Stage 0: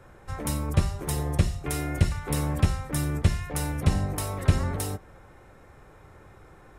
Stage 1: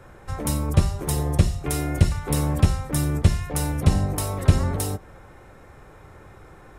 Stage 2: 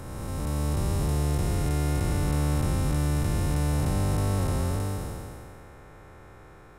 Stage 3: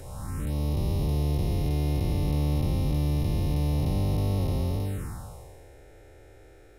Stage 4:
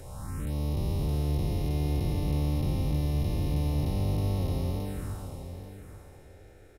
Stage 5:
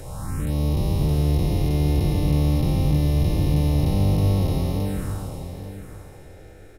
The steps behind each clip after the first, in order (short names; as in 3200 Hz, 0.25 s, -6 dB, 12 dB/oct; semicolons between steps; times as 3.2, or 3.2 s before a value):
dynamic EQ 1900 Hz, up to -4 dB, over -47 dBFS, Q 0.99; gain +4.5 dB
time blur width 0.784 s
envelope phaser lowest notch 150 Hz, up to 1500 Hz, full sweep at -24 dBFS
feedback echo 0.837 s, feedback 17%, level -11 dB; gain -2.5 dB
reverb RT60 0.80 s, pre-delay 6 ms, DRR 13 dB; gain +7.5 dB